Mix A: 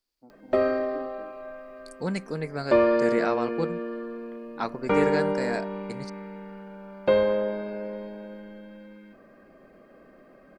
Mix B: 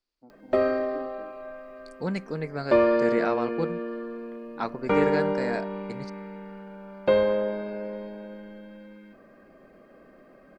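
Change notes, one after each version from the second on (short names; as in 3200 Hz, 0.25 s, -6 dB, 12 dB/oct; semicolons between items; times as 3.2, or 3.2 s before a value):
second voice: add air absorption 86 m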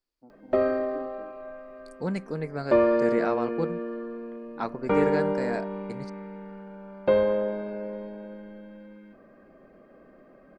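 second voice: remove air absorption 86 m; master: add high shelf 2400 Hz -9 dB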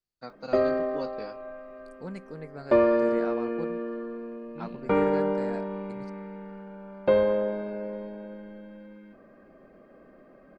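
first voice: remove vocal tract filter u; second voice -9.0 dB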